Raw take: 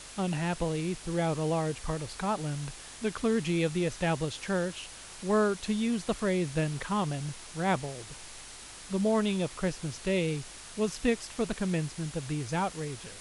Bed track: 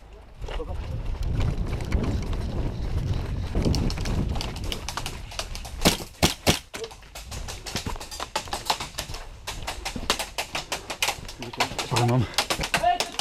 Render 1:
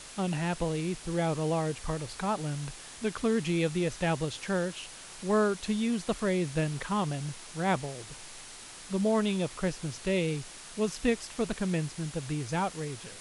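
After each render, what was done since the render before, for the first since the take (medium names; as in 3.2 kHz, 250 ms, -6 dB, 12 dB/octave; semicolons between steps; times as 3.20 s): de-hum 50 Hz, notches 2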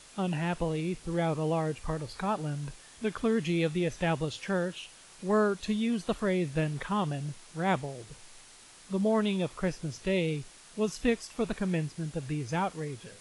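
noise print and reduce 7 dB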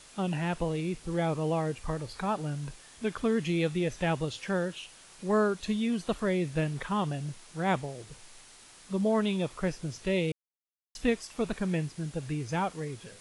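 10.32–10.95 s: mute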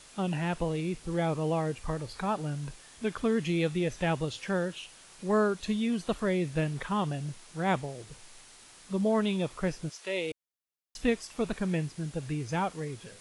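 9.88–10.31 s: high-pass 830 Hz -> 340 Hz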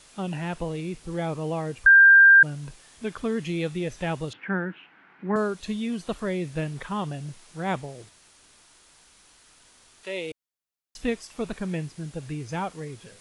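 1.86–2.43 s: bleep 1.59 kHz -9.5 dBFS; 4.33–5.36 s: cabinet simulation 170–2300 Hz, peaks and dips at 190 Hz +6 dB, 290 Hz +8 dB, 550 Hz -8 dB, 840 Hz +4 dB, 1.5 kHz +8 dB, 2.1 kHz +5 dB; 8.09–10.03 s: room tone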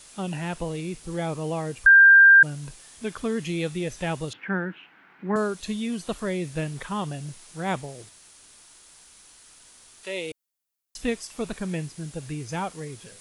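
treble shelf 6.2 kHz +9.5 dB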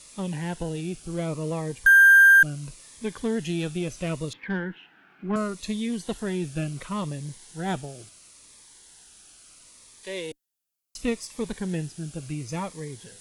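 Chebyshev shaper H 5 -42 dB, 8 -26 dB, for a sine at -8.5 dBFS; Shepard-style phaser falling 0.72 Hz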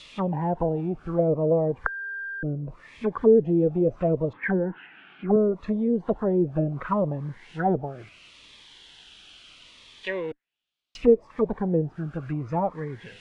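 in parallel at -9 dB: hard clipper -23.5 dBFS, distortion -3 dB; on the sum: touch-sensitive low-pass 450–3600 Hz down, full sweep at -21.5 dBFS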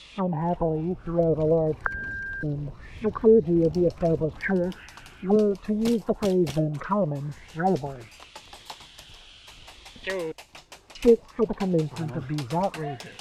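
add bed track -16 dB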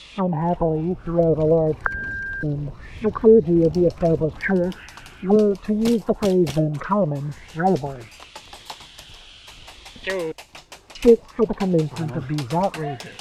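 trim +4.5 dB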